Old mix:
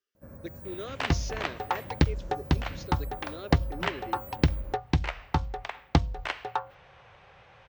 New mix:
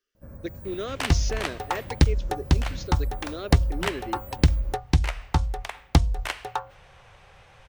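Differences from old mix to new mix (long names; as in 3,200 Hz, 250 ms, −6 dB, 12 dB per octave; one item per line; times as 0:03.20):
speech +6.0 dB
second sound: remove high-frequency loss of the air 150 metres
master: remove high-pass filter 130 Hz 6 dB per octave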